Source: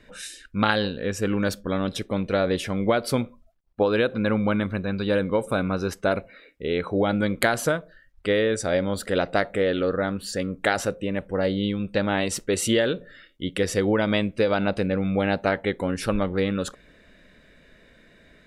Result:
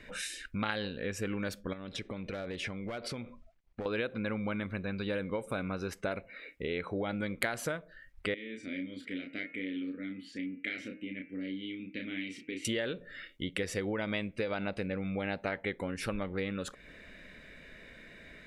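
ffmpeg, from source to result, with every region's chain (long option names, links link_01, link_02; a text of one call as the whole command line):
ffmpeg -i in.wav -filter_complex "[0:a]asettb=1/sr,asplit=3[link_01][link_02][link_03];[link_01]atrim=end=1.734[link_04];[link_02]atrim=start=1.73:end=3.86,asetpts=PTS-STARTPTS,afade=type=in:duration=0.004:curve=qsin,afade=type=out:start_time=2.126:duration=0.004:curve=qsin,lowpass=6600,aeval=exprs='clip(val(0),-1,0.141)':channel_layout=same,acompressor=threshold=-33dB:ratio=4:attack=3.2:release=140:knee=1:detection=peak[link_05];[link_03]atrim=start=3.856[link_06];[link_04][link_05]acrossfade=duration=0.004:curve1=hsin:curve2=qsin[link_07];[link_07][link_06]acrossfade=duration=0.004:curve1=qsin:curve2=hsin,asettb=1/sr,asplit=3[link_08][link_09][link_10];[link_08]atrim=end=8.344[link_11];[link_09]atrim=start=8.34:end=12.65,asetpts=PTS-STARTPTS,afade=type=in:duration=0.004:curve=qsin,afade=type=out:start_time=4.306:duration=0.004:curve=qsin,asplit=3[link_12][link_13][link_14];[link_12]bandpass=frequency=270:width_type=q:width=8,volume=0dB[link_15];[link_13]bandpass=frequency=2290:width_type=q:width=8,volume=-6dB[link_16];[link_14]bandpass=frequency=3010:width_type=q:width=8,volume=-9dB[link_17];[link_15][link_16][link_17]amix=inputs=3:normalize=0,asplit=2[link_18][link_19];[link_19]adelay=32,volume=-4.5dB[link_20];[link_18][link_20]amix=inputs=2:normalize=0,atrim=end_sample=190071,bandreject=frequency=77.98:width_type=h:width=4,bandreject=frequency=155.96:width_type=h:width=4,bandreject=frequency=233.94:width_type=h:width=4,bandreject=frequency=311.92:width_type=h:width=4,bandreject=frequency=389.9:width_type=h:width=4,bandreject=frequency=467.88:width_type=h:width=4,bandreject=frequency=545.86:width_type=h:width=4,bandreject=frequency=623.84:width_type=h:width=4,bandreject=frequency=701.82:width_type=h:width=4,bandreject=frequency=779.8:width_type=h:width=4,bandreject=frequency=857.78:width_type=h:width=4,bandreject=frequency=935.76:width_type=h:width=4,bandreject=frequency=1013.74:width_type=h:width=4,bandreject=frequency=1091.72:width_type=h:width=4,bandreject=frequency=1169.7:width_type=h:width=4,bandreject=frequency=1247.68:width_type=h:width=4,bandreject=frequency=1325.66:width_type=h:width=4,bandreject=frequency=1403.64:width_type=h:width=4,bandreject=frequency=1481.62:width_type=h:width=4,bandreject=frequency=1559.6:width_type=h:width=4,bandreject=frequency=1637.58:width_type=h:width=4,bandreject=frequency=1715.56:width_type=h:width=4,bandreject=frequency=1793.54:width_type=h:width=4,bandreject=frequency=1871.52:width_type=h:width=4,bandreject=frequency=1949.5:width_type=h:width=4,bandreject=frequency=2027.48:width_type=h:width=4,bandreject=frequency=2105.46:width_type=h:width=4,bandreject=frequency=2183.44:width_type=h:width=4,bandreject=frequency=2261.42:width_type=h:width=4,bandreject=frequency=2339.4:width_type=h:width=4,bandreject=frequency=2417.38:width_type=h:width=4,bandreject=frequency=2495.36:width_type=h:width=4,bandreject=frequency=2573.34:width_type=h:width=4,bandreject=frequency=2651.32:width_type=h:width=4,bandreject=frequency=2729.3:width_type=h:width=4,bandreject=frequency=2807.28:width_type=h:width=4,bandreject=frequency=2885.26:width_type=h:width=4[link_21];[link_10]atrim=start=12.646[link_22];[link_11][link_21]acrossfade=duration=0.004:curve1=hsin:curve2=qsin[link_23];[link_23][link_22]acrossfade=duration=0.004:curve1=qsin:curve2=hsin,acompressor=threshold=-38dB:ratio=2.5,equalizer=frequency=2200:width_type=o:width=0.68:gain=7" out.wav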